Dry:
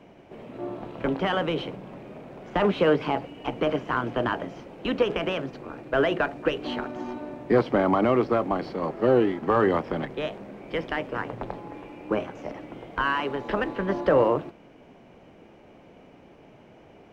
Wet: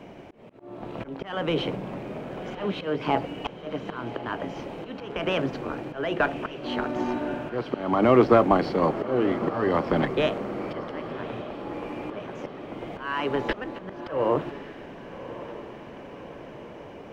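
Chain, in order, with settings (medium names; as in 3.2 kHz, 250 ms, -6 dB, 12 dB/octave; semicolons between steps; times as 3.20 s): slow attack 501 ms; echo that smears into a reverb 1146 ms, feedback 60%, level -13 dB; trim +6.5 dB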